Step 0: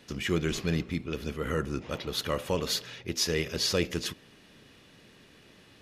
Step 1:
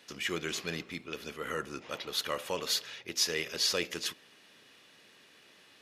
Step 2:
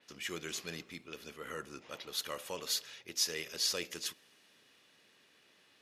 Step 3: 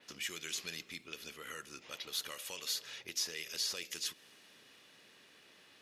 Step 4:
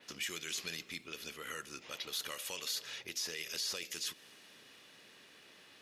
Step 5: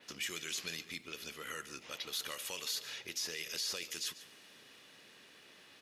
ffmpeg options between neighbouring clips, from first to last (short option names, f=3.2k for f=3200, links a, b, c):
-af "highpass=f=780:p=1"
-af "adynamicequalizer=threshold=0.00562:dfrequency=4700:dqfactor=0.7:tfrequency=4700:tqfactor=0.7:attack=5:release=100:ratio=0.375:range=3.5:mode=boostabove:tftype=highshelf,volume=-7dB"
-filter_complex "[0:a]acrossover=split=1900|5300[a][b][c];[a]acompressor=threshold=-56dB:ratio=4[d];[b]acompressor=threshold=-44dB:ratio=4[e];[c]acompressor=threshold=-46dB:ratio=4[f];[d][e][f]amix=inputs=3:normalize=0,volume=4.5dB"
-af "alimiter=level_in=6.5dB:limit=-24dB:level=0:latency=1:release=13,volume=-6.5dB,volume=2.5dB"
-af "aecho=1:1:143:0.158"